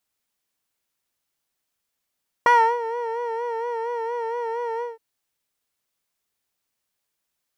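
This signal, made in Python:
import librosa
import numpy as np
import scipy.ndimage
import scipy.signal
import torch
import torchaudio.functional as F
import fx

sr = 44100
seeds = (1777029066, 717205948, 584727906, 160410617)

y = fx.sub_patch_vibrato(sr, seeds[0], note=82, wave='triangle', wave2='square', interval_st=12, detune_cents=16, level2_db=-10, sub_db=-5.5, noise_db=-25.5, kind='bandpass', cutoff_hz=350.0, q=1.5, env_oct=2.0, env_decay_s=0.31, env_sustain_pct=35, attack_ms=1.6, decay_s=0.32, sustain_db=-13.5, release_s=0.17, note_s=2.35, lfo_hz=4.3, vibrato_cents=63)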